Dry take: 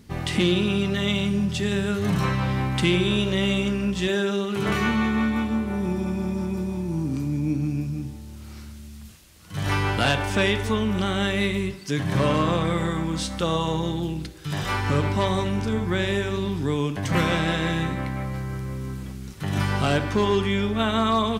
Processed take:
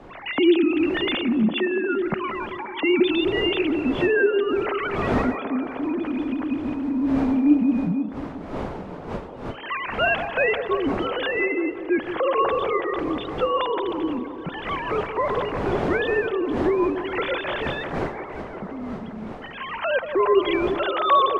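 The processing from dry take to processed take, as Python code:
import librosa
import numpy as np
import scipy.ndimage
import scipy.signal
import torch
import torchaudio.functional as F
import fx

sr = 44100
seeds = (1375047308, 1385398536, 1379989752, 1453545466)

p1 = fx.sine_speech(x, sr)
p2 = fx.dmg_wind(p1, sr, seeds[0], corner_hz=620.0, level_db=-35.0)
y = p2 + fx.echo_wet_bandpass(p2, sr, ms=175, feedback_pct=72, hz=590.0, wet_db=-9.0, dry=0)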